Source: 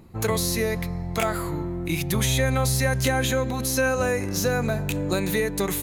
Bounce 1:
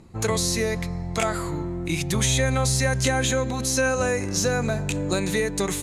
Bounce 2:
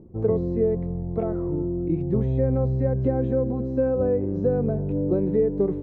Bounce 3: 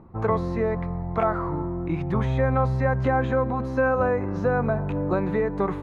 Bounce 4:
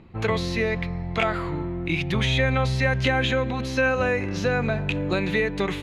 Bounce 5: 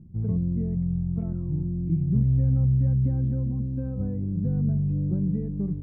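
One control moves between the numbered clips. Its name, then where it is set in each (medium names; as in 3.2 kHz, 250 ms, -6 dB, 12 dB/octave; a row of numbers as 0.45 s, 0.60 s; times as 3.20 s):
resonant low-pass, frequency: 7.8 kHz, 430 Hz, 1.1 kHz, 2.9 kHz, 170 Hz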